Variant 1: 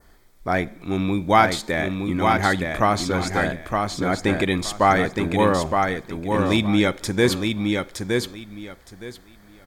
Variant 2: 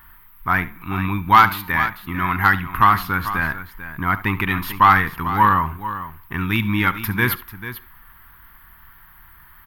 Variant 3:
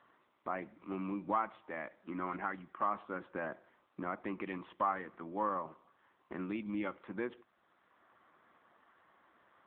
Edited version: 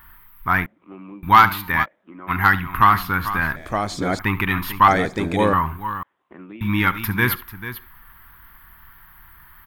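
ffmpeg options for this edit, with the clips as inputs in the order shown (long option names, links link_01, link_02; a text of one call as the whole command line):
ffmpeg -i take0.wav -i take1.wav -i take2.wav -filter_complex "[2:a]asplit=3[link_01][link_02][link_03];[0:a]asplit=2[link_04][link_05];[1:a]asplit=6[link_06][link_07][link_08][link_09][link_10][link_11];[link_06]atrim=end=0.662[link_12];[link_01]atrim=start=0.658:end=1.232[link_13];[link_07]atrim=start=1.228:end=1.86[link_14];[link_02]atrim=start=1.82:end=2.31[link_15];[link_08]atrim=start=2.27:end=3.562[link_16];[link_04]atrim=start=3.558:end=4.192[link_17];[link_09]atrim=start=4.188:end=4.882[link_18];[link_05]atrim=start=4.878:end=5.532[link_19];[link_10]atrim=start=5.528:end=6.032[link_20];[link_03]atrim=start=6.028:end=6.612[link_21];[link_11]atrim=start=6.608[link_22];[link_12][link_13]acrossfade=duration=0.004:curve1=hsin:curve2=hsin[link_23];[link_23][link_14]acrossfade=duration=0.004:curve1=hsin:curve2=hsin[link_24];[link_24][link_15]acrossfade=duration=0.04:curve1=tri:curve2=tri[link_25];[link_25][link_16]acrossfade=duration=0.04:curve1=tri:curve2=tri[link_26];[link_26][link_17]acrossfade=duration=0.004:curve1=hsin:curve2=hsin[link_27];[link_27][link_18]acrossfade=duration=0.004:curve1=hsin:curve2=hsin[link_28];[link_28][link_19]acrossfade=duration=0.004:curve1=hsin:curve2=hsin[link_29];[link_29][link_20]acrossfade=duration=0.004:curve1=hsin:curve2=hsin[link_30];[link_30][link_21]acrossfade=duration=0.004:curve1=hsin:curve2=hsin[link_31];[link_31][link_22]acrossfade=duration=0.004:curve1=hsin:curve2=hsin" out.wav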